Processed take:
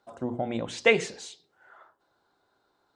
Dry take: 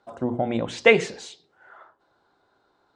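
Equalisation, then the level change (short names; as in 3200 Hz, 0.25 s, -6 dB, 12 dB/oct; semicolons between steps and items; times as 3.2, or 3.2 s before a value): high shelf 5300 Hz +8.5 dB; -5.5 dB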